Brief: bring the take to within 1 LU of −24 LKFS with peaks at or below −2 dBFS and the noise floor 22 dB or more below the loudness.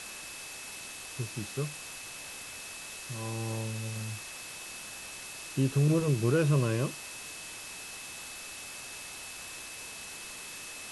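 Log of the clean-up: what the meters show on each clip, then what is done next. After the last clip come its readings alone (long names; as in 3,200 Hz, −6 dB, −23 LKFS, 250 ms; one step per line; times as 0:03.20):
interfering tone 2,600 Hz; level of the tone −47 dBFS; background noise floor −44 dBFS; target noise floor −57 dBFS; integrated loudness −34.5 LKFS; sample peak −15.5 dBFS; target loudness −24.0 LKFS
→ notch filter 2,600 Hz, Q 30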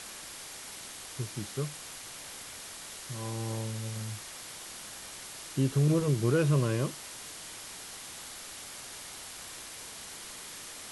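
interfering tone none found; background noise floor −45 dBFS; target noise floor −57 dBFS
→ broadband denoise 12 dB, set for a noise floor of −45 dBFS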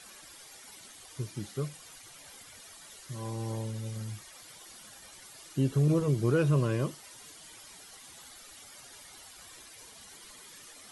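background noise floor −52 dBFS; target noise floor −54 dBFS
→ broadband denoise 6 dB, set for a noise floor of −52 dBFS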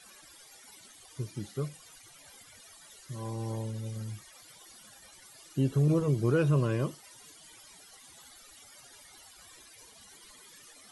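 background noise floor −55 dBFS; integrated loudness −31.0 LKFS; sample peak −16.0 dBFS; target loudness −24.0 LKFS
→ level +7 dB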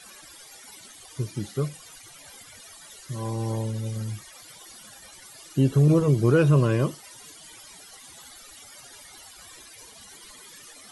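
integrated loudness −24.0 LKFS; sample peak −9.0 dBFS; background noise floor −48 dBFS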